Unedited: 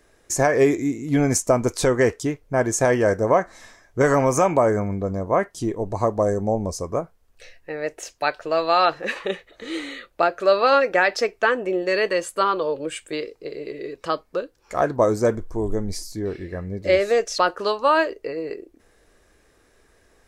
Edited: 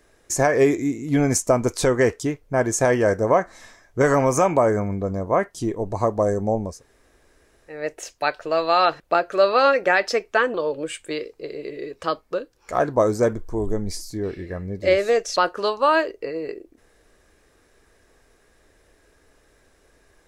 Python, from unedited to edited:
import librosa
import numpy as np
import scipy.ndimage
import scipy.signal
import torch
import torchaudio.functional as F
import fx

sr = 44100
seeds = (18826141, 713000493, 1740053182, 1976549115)

y = fx.edit(x, sr, fx.room_tone_fill(start_s=6.71, length_s=1.03, crossfade_s=0.24),
    fx.cut(start_s=9.0, length_s=1.08),
    fx.cut(start_s=11.62, length_s=0.94), tone=tone)